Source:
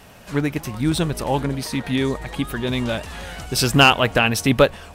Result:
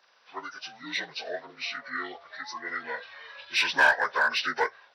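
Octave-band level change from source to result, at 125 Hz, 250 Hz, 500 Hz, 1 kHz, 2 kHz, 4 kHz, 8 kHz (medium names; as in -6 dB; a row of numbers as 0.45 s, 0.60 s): under -35 dB, -25.0 dB, -14.0 dB, -7.5 dB, -2.0 dB, -9.5 dB, -15.5 dB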